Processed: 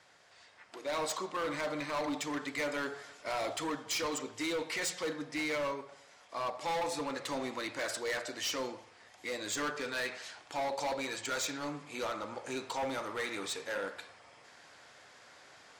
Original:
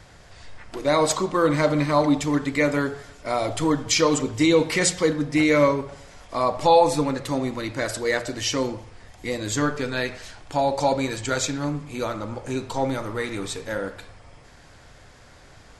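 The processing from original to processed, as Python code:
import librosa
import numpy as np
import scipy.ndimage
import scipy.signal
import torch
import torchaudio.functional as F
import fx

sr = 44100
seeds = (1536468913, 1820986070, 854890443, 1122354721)

y = fx.weighting(x, sr, curve='A')
y = fx.rider(y, sr, range_db=3, speed_s=0.5)
y = np.clip(10.0 ** (23.5 / 20.0) * y, -1.0, 1.0) / 10.0 ** (23.5 / 20.0)
y = y * librosa.db_to_amplitude(-7.5)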